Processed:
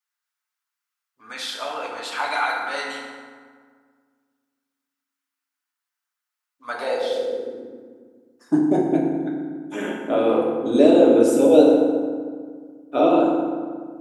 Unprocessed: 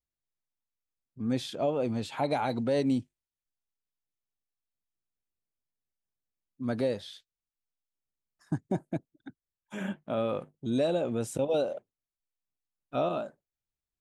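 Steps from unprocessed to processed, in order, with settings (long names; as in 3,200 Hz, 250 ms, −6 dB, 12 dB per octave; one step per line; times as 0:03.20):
feedback delay network reverb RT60 1.8 s, low-frequency decay 1.35×, high-frequency decay 0.55×, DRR −4.5 dB
high-pass filter sweep 1,300 Hz → 330 Hz, 0:06.53–0:07.65
harmonic and percussive parts rebalanced harmonic −4 dB
level +7 dB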